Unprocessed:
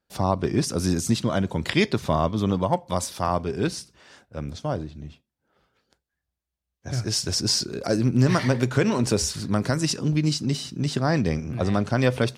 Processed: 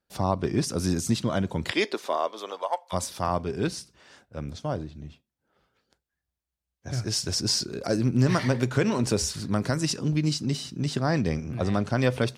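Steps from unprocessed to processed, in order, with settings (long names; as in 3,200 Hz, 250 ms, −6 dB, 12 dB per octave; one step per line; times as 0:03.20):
0:01.71–0:02.92: high-pass filter 260 Hz → 710 Hz 24 dB per octave
level −2.5 dB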